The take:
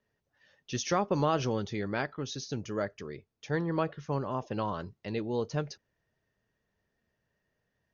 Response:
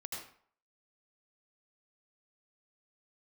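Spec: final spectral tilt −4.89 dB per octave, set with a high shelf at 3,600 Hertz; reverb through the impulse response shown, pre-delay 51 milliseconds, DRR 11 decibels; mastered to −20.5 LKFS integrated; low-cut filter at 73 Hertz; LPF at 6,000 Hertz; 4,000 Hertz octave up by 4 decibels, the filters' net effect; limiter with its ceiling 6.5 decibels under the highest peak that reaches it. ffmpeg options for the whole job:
-filter_complex "[0:a]highpass=73,lowpass=6000,highshelf=frequency=3600:gain=4,equalizer=frequency=4000:width_type=o:gain=3.5,alimiter=limit=-20dB:level=0:latency=1,asplit=2[link_01][link_02];[1:a]atrim=start_sample=2205,adelay=51[link_03];[link_02][link_03]afir=irnorm=-1:irlink=0,volume=-10.5dB[link_04];[link_01][link_04]amix=inputs=2:normalize=0,volume=13.5dB"

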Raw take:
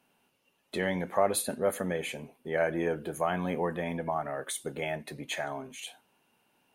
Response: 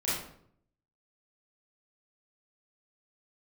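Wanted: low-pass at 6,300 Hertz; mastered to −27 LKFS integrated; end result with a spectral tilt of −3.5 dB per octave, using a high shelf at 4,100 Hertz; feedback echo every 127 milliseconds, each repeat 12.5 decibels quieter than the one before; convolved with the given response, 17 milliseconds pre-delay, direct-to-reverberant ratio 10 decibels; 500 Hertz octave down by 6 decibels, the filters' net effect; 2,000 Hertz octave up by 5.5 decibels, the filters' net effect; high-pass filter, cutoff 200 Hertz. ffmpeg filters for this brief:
-filter_complex "[0:a]highpass=200,lowpass=6300,equalizer=frequency=500:width_type=o:gain=-8,equalizer=frequency=2000:width_type=o:gain=6.5,highshelf=frequency=4100:gain=3,aecho=1:1:127|254|381:0.237|0.0569|0.0137,asplit=2[link_01][link_02];[1:a]atrim=start_sample=2205,adelay=17[link_03];[link_02][link_03]afir=irnorm=-1:irlink=0,volume=-17.5dB[link_04];[link_01][link_04]amix=inputs=2:normalize=0,volume=6dB"

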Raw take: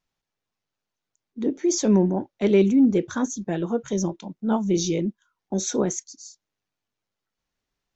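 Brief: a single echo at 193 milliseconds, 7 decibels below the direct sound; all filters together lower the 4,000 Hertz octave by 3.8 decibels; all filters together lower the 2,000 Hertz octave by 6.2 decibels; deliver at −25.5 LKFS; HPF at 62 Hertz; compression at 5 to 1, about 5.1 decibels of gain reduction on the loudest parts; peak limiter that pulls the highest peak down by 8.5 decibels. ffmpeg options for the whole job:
ffmpeg -i in.wav -af "highpass=62,equalizer=frequency=2000:width_type=o:gain=-7.5,equalizer=frequency=4000:width_type=o:gain=-3.5,acompressor=threshold=-19dB:ratio=5,alimiter=limit=-21dB:level=0:latency=1,aecho=1:1:193:0.447,volume=4dB" out.wav

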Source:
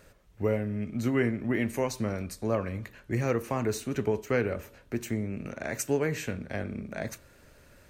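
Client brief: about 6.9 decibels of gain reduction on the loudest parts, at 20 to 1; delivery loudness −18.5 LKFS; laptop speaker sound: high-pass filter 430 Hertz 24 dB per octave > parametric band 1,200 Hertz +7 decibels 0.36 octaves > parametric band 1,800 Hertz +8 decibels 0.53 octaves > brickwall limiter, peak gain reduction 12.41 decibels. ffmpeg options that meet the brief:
ffmpeg -i in.wav -af "acompressor=threshold=-28dB:ratio=20,highpass=frequency=430:width=0.5412,highpass=frequency=430:width=1.3066,equalizer=frequency=1200:width_type=o:width=0.36:gain=7,equalizer=frequency=1800:width_type=o:width=0.53:gain=8,volume=23dB,alimiter=limit=-7dB:level=0:latency=1" out.wav

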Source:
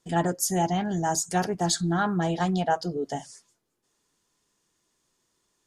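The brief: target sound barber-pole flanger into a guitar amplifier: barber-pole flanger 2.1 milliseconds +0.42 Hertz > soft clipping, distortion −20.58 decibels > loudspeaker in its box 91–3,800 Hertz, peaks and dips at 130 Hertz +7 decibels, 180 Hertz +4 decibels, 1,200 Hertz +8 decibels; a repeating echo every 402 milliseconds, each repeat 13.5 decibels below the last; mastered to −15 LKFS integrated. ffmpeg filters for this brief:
ffmpeg -i in.wav -filter_complex "[0:a]aecho=1:1:402|804:0.211|0.0444,asplit=2[link_01][link_02];[link_02]adelay=2.1,afreqshift=0.42[link_03];[link_01][link_03]amix=inputs=2:normalize=1,asoftclip=threshold=-19dB,highpass=91,equalizer=frequency=130:width_type=q:width=4:gain=7,equalizer=frequency=180:width_type=q:width=4:gain=4,equalizer=frequency=1200:width_type=q:width=4:gain=8,lowpass=frequency=3800:width=0.5412,lowpass=frequency=3800:width=1.3066,volume=13dB" out.wav

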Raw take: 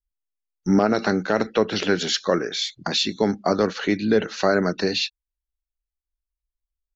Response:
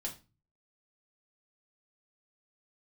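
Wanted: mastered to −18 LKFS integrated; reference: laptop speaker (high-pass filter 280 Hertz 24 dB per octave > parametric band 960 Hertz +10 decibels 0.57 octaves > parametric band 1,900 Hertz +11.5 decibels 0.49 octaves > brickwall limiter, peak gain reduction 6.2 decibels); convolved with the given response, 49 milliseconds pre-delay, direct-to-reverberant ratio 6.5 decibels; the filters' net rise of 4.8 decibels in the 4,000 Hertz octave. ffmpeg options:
-filter_complex "[0:a]equalizer=frequency=4000:width_type=o:gain=4.5,asplit=2[link_01][link_02];[1:a]atrim=start_sample=2205,adelay=49[link_03];[link_02][link_03]afir=irnorm=-1:irlink=0,volume=-6dB[link_04];[link_01][link_04]amix=inputs=2:normalize=0,highpass=frequency=280:width=0.5412,highpass=frequency=280:width=1.3066,equalizer=frequency=960:width_type=o:width=0.57:gain=10,equalizer=frequency=1900:width_type=o:width=0.49:gain=11.5,volume=2dB,alimiter=limit=-5.5dB:level=0:latency=1"

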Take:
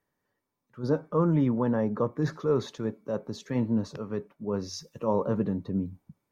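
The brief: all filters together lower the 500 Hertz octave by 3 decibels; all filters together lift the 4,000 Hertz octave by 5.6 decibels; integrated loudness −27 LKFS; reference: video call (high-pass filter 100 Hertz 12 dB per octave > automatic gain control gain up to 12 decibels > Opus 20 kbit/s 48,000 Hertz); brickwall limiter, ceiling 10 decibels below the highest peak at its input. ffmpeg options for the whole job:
ffmpeg -i in.wav -af "equalizer=frequency=500:width_type=o:gain=-3.5,equalizer=frequency=4000:width_type=o:gain=7,alimiter=level_in=0.5dB:limit=-24dB:level=0:latency=1,volume=-0.5dB,highpass=100,dynaudnorm=maxgain=12dB,volume=8.5dB" -ar 48000 -c:a libopus -b:a 20k out.opus

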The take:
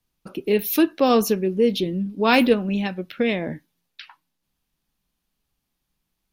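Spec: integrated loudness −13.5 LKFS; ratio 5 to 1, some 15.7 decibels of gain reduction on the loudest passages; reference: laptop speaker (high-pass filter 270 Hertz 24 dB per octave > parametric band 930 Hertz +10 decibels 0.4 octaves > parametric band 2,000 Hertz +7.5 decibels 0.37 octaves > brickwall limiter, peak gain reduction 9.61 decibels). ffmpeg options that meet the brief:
ffmpeg -i in.wav -af "acompressor=threshold=-31dB:ratio=5,highpass=frequency=270:width=0.5412,highpass=frequency=270:width=1.3066,equalizer=frequency=930:width_type=o:width=0.4:gain=10,equalizer=frequency=2000:width_type=o:width=0.37:gain=7.5,volume=24.5dB,alimiter=limit=-2.5dB:level=0:latency=1" out.wav

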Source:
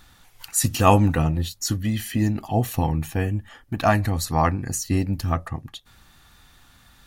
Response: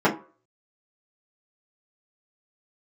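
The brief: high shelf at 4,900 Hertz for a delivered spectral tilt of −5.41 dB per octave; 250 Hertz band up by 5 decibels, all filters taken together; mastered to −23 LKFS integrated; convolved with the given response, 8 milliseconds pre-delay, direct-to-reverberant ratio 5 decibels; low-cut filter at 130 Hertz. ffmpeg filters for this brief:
-filter_complex "[0:a]highpass=130,equalizer=frequency=250:width_type=o:gain=7,highshelf=frequency=4900:gain=6,asplit=2[link_01][link_02];[1:a]atrim=start_sample=2205,adelay=8[link_03];[link_02][link_03]afir=irnorm=-1:irlink=0,volume=-24dB[link_04];[link_01][link_04]amix=inputs=2:normalize=0,volume=-5dB"

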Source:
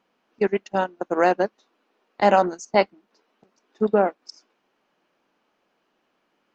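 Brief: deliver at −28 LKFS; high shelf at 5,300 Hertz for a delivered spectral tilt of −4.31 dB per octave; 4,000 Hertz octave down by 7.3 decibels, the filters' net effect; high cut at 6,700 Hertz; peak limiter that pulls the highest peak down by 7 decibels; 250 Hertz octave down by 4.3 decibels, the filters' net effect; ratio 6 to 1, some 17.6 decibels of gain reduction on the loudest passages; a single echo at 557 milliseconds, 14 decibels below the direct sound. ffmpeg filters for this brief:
ffmpeg -i in.wav -af "lowpass=6700,equalizer=frequency=250:width_type=o:gain=-6.5,equalizer=frequency=4000:width_type=o:gain=-7,highshelf=frequency=5300:gain=-8,acompressor=threshold=-33dB:ratio=6,alimiter=level_in=3dB:limit=-24dB:level=0:latency=1,volume=-3dB,aecho=1:1:557:0.2,volume=14dB" out.wav

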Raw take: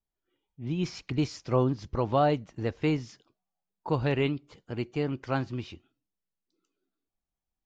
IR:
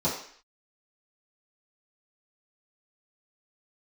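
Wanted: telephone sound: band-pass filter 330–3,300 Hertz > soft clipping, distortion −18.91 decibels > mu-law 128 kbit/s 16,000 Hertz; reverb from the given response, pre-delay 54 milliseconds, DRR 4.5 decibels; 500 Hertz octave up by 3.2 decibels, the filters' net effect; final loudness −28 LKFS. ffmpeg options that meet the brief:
-filter_complex "[0:a]equalizer=frequency=500:width_type=o:gain=5,asplit=2[link_01][link_02];[1:a]atrim=start_sample=2205,adelay=54[link_03];[link_02][link_03]afir=irnorm=-1:irlink=0,volume=-15.5dB[link_04];[link_01][link_04]amix=inputs=2:normalize=0,highpass=330,lowpass=3300,asoftclip=threshold=-13.5dB,volume=0.5dB" -ar 16000 -c:a pcm_mulaw

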